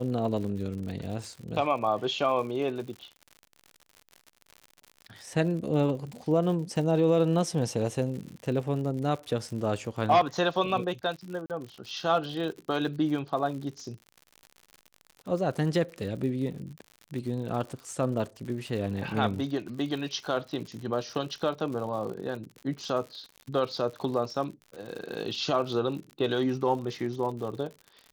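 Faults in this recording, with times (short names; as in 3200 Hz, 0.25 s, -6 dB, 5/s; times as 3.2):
crackle 85/s -37 dBFS
11.46–11.5 gap 38 ms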